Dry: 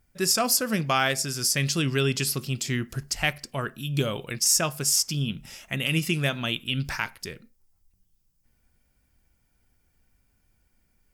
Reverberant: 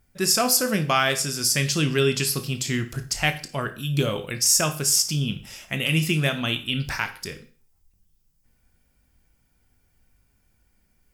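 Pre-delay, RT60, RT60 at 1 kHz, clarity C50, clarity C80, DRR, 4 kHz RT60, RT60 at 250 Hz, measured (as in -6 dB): 20 ms, 0.40 s, 0.40 s, 12.5 dB, 18.0 dB, 7.5 dB, 0.40 s, 0.45 s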